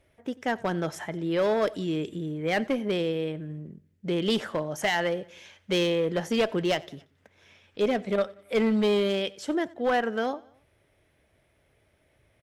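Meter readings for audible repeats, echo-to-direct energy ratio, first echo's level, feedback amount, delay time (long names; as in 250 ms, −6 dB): 2, −22.0 dB, −23.0 dB, 50%, 91 ms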